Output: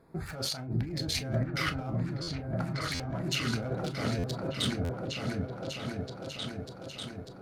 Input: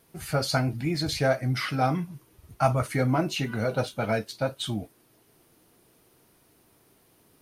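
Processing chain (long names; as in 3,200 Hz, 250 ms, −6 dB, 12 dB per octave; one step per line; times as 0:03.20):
adaptive Wiener filter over 15 samples
compressor whose output falls as the input rises −34 dBFS, ratio −1
echo whose low-pass opens from repeat to repeat 595 ms, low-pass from 400 Hz, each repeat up 2 octaves, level 0 dB
on a send at −9.5 dB: convolution reverb, pre-delay 25 ms
on the sum: buffer that repeats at 0:02.22/0:02.94/0:04.18/0:04.84, samples 512, times 4
level −2 dB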